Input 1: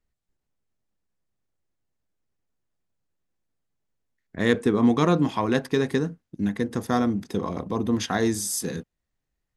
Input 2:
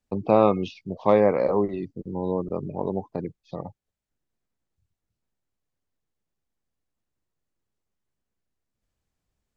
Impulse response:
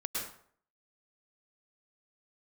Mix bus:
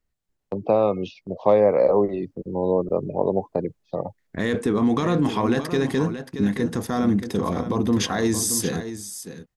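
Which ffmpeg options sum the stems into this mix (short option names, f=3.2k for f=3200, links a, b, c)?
-filter_complex "[0:a]alimiter=limit=-18.5dB:level=0:latency=1:release=18,volume=1dB,asplit=2[a][b];[b]volume=-10dB[c];[1:a]agate=range=-8dB:threshold=-42dB:ratio=16:detection=peak,equalizer=f=560:t=o:w=1:g=8,acrossover=split=160|3000[d][e][f];[e]acompressor=threshold=-14dB:ratio=3[g];[d][g][f]amix=inputs=3:normalize=0,adelay=400,volume=-2.5dB[h];[c]aecho=0:1:625:1[i];[a][h][i]amix=inputs=3:normalize=0,dynaudnorm=f=210:g=13:m=4.5dB"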